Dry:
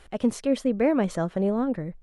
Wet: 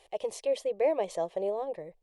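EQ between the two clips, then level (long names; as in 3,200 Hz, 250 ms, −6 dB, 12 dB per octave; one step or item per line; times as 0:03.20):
bass and treble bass −15 dB, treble −4 dB
low-shelf EQ 120 Hz −6 dB
phaser with its sweep stopped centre 590 Hz, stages 4
0.0 dB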